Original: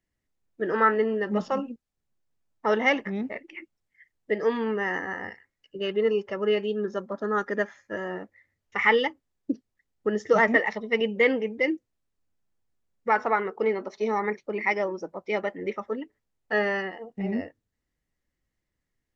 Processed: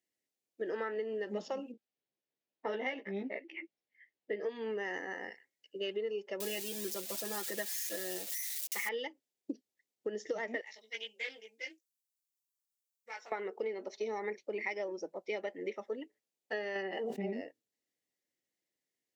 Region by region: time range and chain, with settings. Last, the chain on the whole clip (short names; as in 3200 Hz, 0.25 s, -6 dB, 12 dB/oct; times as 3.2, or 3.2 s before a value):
1.72–4.49 LPF 3400 Hz + doubler 15 ms -2.5 dB
6.4–8.89 switching spikes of -23.5 dBFS + comb 5.9 ms, depth 75%
10.61–13.32 differentiator + doubler 18 ms -2.5 dB + Doppler distortion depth 0.1 ms
16.75–17.33 high shelf 4300 Hz -9 dB + comb 5.1 ms, depth 90% + backwards sustainer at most 31 dB/s
whole clip: HPF 410 Hz 12 dB/oct; bell 1200 Hz -15 dB 1.2 oct; compressor 12:1, threshold -33 dBFS